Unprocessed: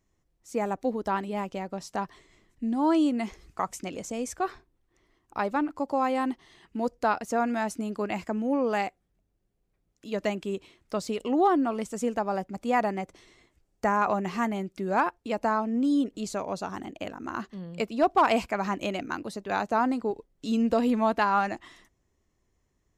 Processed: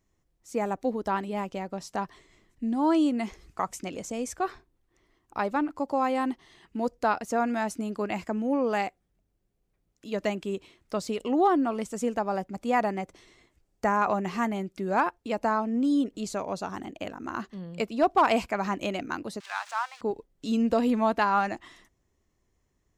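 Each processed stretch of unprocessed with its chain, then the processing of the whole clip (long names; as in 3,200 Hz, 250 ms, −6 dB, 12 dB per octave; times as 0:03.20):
0:19.40–0:20.01: spike at every zero crossing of −25.5 dBFS + inverse Chebyshev high-pass filter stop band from 290 Hz, stop band 60 dB + high-frequency loss of the air 120 metres
whole clip: no processing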